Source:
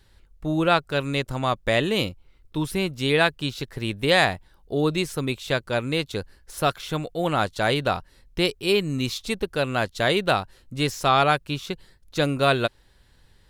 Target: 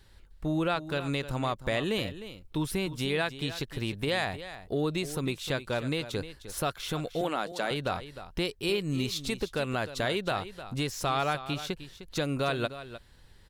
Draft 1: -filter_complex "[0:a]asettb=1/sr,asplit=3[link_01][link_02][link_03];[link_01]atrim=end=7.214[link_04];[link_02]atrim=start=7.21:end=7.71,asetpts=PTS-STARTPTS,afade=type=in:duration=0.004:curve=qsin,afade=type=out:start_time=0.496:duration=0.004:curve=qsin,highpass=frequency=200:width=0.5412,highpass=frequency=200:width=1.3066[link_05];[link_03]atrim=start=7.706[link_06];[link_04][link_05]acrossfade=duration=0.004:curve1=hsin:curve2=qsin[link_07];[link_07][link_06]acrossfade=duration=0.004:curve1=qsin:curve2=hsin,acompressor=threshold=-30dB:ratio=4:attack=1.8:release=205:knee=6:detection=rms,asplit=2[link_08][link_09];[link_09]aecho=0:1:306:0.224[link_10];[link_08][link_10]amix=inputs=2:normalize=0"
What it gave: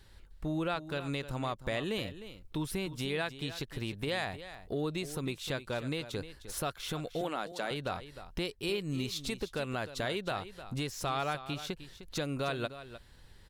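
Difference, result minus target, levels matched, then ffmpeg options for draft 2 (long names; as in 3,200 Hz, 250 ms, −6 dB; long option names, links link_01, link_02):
downward compressor: peak gain reduction +5 dB
-filter_complex "[0:a]asettb=1/sr,asplit=3[link_01][link_02][link_03];[link_01]atrim=end=7.214[link_04];[link_02]atrim=start=7.21:end=7.71,asetpts=PTS-STARTPTS,afade=type=in:duration=0.004:curve=qsin,afade=type=out:start_time=0.496:duration=0.004:curve=qsin,highpass=frequency=200:width=0.5412,highpass=frequency=200:width=1.3066[link_05];[link_03]atrim=start=7.706[link_06];[link_04][link_05]acrossfade=duration=0.004:curve1=hsin:curve2=qsin[link_07];[link_07][link_06]acrossfade=duration=0.004:curve1=qsin:curve2=hsin,acompressor=threshold=-23.5dB:ratio=4:attack=1.8:release=205:knee=6:detection=rms,asplit=2[link_08][link_09];[link_09]aecho=0:1:306:0.224[link_10];[link_08][link_10]amix=inputs=2:normalize=0"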